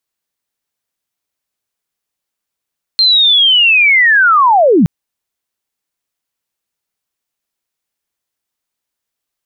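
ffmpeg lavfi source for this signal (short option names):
-f lavfi -i "aevalsrc='pow(10,(-6+1*t/1.87)/20)*sin(2*PI*(4200*t-4060*t*t/(2*1.87)))':d=1.87:s=44100"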